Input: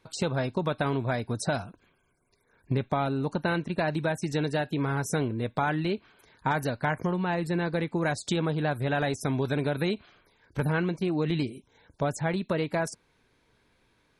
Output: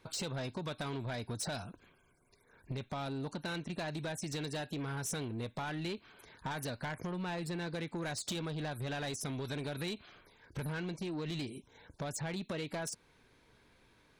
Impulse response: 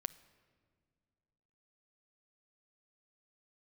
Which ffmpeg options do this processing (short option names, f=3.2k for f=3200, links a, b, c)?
-filter_complex "[0:a]acrossover=split=2800[a][b];[a]acompressor=threshold=-35dB:ratio=6[c];[c][b]amix=inputs=2:normalize=0,asoftclip=type=tanh:threshold=-34.5dB,volume=1.5dB"